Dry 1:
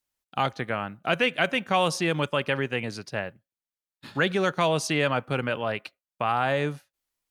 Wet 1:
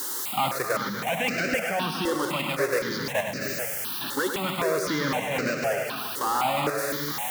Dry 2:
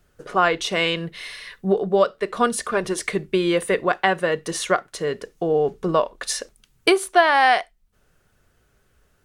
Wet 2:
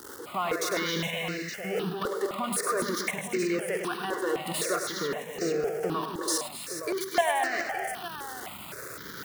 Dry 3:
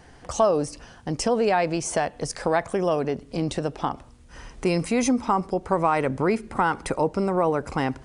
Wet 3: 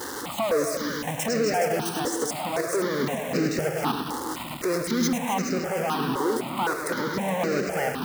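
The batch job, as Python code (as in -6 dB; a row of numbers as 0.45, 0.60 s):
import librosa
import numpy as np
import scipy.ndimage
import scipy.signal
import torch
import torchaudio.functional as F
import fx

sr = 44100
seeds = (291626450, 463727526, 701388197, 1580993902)

y = x + 0.5 * 10.0 ** (-23.0 / 20.0) * np.sign(x)
y = fx.level_steps(y, sr, step_db=12)
y = fx.leveller(y, sr, passes=2)
y = fx.rider(y, sr, range_db=3, speed_s=2.0)
y = scipy.signal.sosfilt(scipy.signal.cheby1(2, 1.0, 230.0, 'highpass', fs=sr, output='sos'), y)
y = fx.echo_multitap(y, sr, ms=(104, 244, 268, 344, 419, 868), db=(-7.5, -13.0, -9.0, -12.5, -9.5, -10.5))
y = fx.phaser_held(y, sr, hz=3.9, low_hz=660.0, high_hz=3300.0)
y = librosa.util.normalize(y) * 10.0 ** (-12 / 20.0)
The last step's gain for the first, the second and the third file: -3.5, -9.5, -2.5 dB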